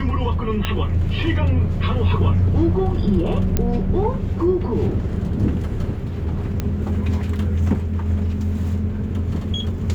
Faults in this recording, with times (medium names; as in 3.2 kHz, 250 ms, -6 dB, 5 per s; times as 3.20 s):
0.65 s: pop -8 dBFS
3.57 s: pop -6 dBFS
6.60 s: pop -10 dBFS